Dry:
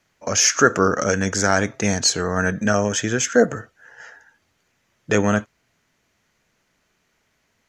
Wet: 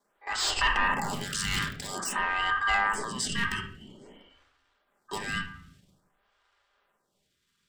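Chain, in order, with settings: 1.04–1.88 cycle switcher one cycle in 2, inverted; in parallel at +1.5 dB: level quantiser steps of 17 dB; on the sum: transient shaper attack -6 dB, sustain +7 dB; hard clip -11 dBFS, distortion -10 dB; ring modulator 1400 Hz; on a send at -4 dB: reverb RT60 0.80 s, pre-delay 5 ms; on the sum: photocell phaser 0.5 Hz; gain -6 dB

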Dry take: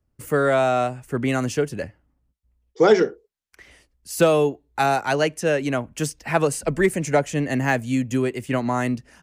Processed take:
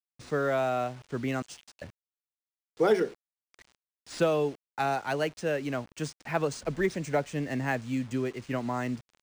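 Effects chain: 1.42–1.82 steep high-pass 2900 Hz 36 dB/oct; bit-crush 7-bit; decimation joined by straight lines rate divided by 3×; gain -8.5 dB

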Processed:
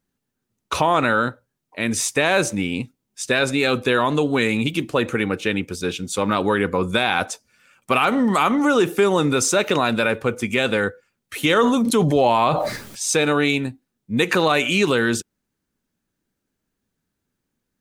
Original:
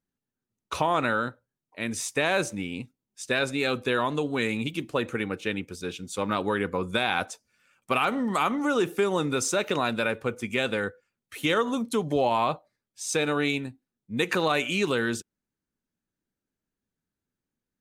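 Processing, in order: in parallel at 0 dB: limiter -21.5 dBFS, peak gain reduction 11 dB; 11.48–13.13 on the sum: sustainer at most 32 dB/s; gain +3.5 dB

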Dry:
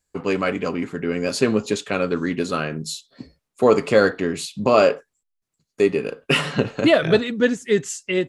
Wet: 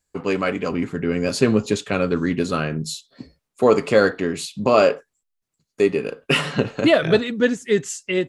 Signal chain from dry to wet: 0.71–2.94 bell 76 Hz +7.5 dB 2.5 oct

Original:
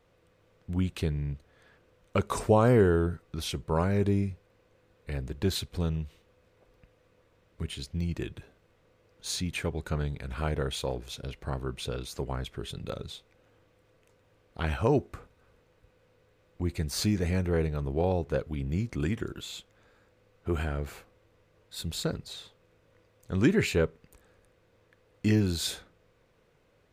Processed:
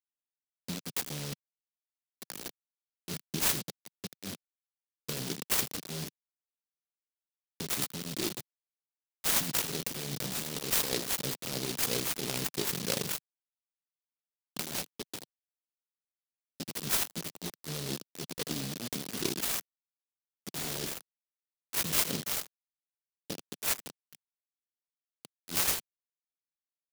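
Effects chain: negative-ratio compressor -34 dBFS, ratio -0.5; echo 79 ms -14.5 dB; 1.33–2.46 level quantiser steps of 21 dB; bit-crush 6-bit; dynamic EQ 5200 Hz, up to +5 dB, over -46 dBFS, Q 0.81; HPF 160 Hz 24 dB/oct; 14.71–16.66 air absorption 150 m; noise-modulated delay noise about 4100 Hz, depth 0.3 ms

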